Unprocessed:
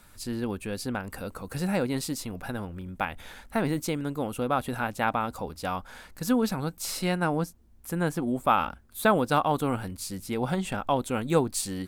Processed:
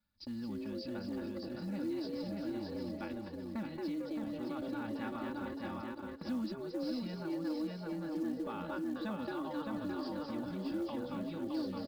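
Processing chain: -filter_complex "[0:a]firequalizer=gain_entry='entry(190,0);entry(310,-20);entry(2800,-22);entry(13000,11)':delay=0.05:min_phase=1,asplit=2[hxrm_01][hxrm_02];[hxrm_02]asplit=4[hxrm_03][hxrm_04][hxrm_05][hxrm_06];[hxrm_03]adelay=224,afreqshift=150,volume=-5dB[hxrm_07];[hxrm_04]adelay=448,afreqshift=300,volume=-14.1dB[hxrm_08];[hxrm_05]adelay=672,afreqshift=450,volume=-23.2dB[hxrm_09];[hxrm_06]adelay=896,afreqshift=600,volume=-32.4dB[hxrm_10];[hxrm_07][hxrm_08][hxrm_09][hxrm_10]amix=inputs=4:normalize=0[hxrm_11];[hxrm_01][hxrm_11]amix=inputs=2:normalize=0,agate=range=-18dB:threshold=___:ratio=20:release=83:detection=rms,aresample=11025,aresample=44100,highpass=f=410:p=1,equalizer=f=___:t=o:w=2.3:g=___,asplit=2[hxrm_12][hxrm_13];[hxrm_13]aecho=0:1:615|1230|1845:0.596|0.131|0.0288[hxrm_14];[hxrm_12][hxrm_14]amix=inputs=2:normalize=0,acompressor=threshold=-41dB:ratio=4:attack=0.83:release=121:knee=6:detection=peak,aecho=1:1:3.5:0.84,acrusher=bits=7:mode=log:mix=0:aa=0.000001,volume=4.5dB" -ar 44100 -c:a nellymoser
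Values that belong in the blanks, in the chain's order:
-39dB, 4200, 2.5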